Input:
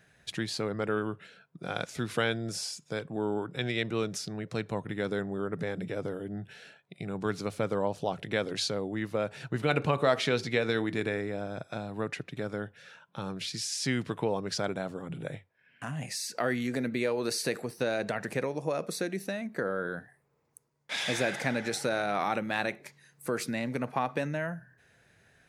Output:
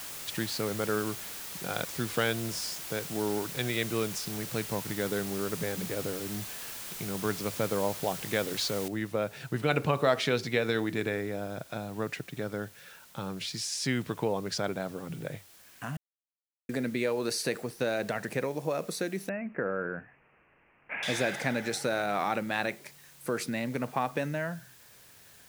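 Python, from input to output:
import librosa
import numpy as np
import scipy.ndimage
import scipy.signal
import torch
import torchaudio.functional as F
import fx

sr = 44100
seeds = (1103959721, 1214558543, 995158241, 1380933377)

y = fx.noise_floor_step(x, sr, seeds[0], at_s=8.88, before_db=-41, after_db=-56, tilt_db=0.0)
y = fx.steep_lowpass(y, sr, hz=2700.0, slope=96, at=(19.29, 21.03))
y = fx.edit(y, sr, fx.silence(start_s=15.97, length_s=0.72), tone=tone)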